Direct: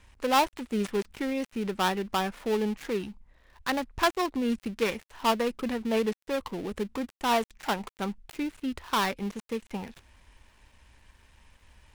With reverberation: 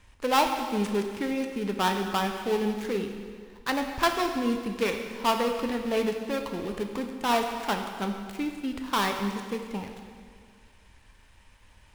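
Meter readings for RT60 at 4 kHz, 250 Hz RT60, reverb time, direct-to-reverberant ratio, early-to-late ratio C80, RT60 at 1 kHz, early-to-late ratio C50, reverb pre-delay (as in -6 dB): 1.8 s, 1.9 s, 1.9 s, 4.0 dB, 7.0 dB, 1.9 s, 5.5 dB, 5 ms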